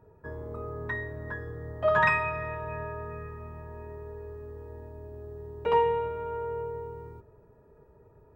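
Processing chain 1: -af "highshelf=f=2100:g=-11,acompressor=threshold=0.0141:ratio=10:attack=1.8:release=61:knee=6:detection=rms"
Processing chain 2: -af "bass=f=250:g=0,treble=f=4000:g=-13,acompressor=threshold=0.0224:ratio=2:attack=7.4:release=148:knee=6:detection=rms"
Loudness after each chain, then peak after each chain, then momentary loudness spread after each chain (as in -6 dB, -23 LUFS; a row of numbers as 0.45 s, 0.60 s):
-43.5 LUFS, -37.0 LUFS; -31.0 dBFS, -19.5 dBFS; 12 LU, 13 LU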